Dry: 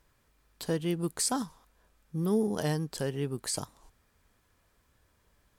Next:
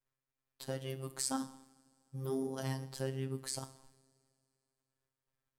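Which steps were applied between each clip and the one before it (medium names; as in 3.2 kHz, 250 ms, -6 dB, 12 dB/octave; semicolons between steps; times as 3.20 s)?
expander -57 dBFS; two-slope reverb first 0.63 s, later 2.6 s, from -19 dB, DRR 9.5 dB; robot voice 133 Hz; trim -5 dB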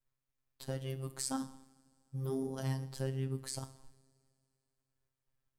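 bass shelf 120 Hz +12 dB; trim -2 dB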